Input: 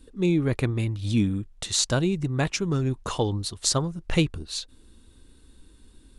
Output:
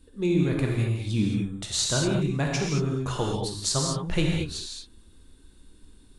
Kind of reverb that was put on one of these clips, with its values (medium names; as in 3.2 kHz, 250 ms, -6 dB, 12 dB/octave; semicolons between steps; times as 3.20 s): gated-style reverb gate 250 ms flat, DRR -1.5 dB; trim -4.5 dB